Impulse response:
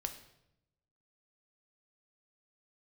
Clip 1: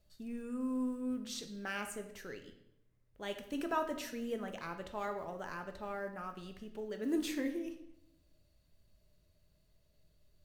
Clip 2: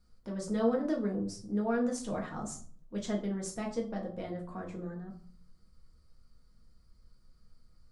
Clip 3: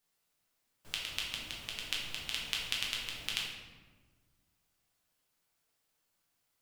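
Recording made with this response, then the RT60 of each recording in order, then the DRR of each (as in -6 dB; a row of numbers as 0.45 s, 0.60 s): 1; 0.85 s, 0.50 s, 1.4 s; 6.0 dB, -1.0 dB, -4.0 dB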